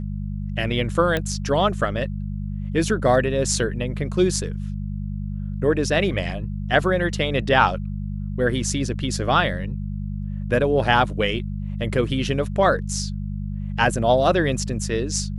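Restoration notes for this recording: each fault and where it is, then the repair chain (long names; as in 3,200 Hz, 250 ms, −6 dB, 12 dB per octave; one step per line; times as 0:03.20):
mains hum 50 Hz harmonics 4 −28 dBFS
0:01.17: click −10 dBFS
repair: click removal
hum removal 50 Hz, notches 4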